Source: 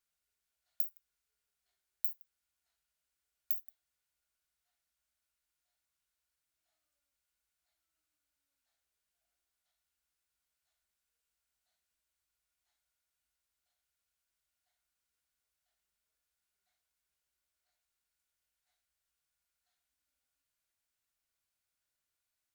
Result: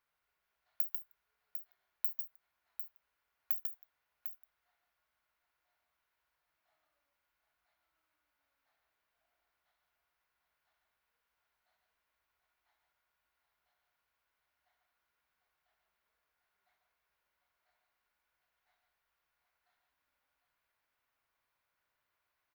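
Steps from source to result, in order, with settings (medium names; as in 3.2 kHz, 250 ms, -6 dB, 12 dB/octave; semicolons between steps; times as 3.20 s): graphic EQ 125/500/1000/2000/8000 Hz +4/+5/+11/+6/-12 dB; multi-tap echo 144/147/750 ms -6/-18/-8.5 dB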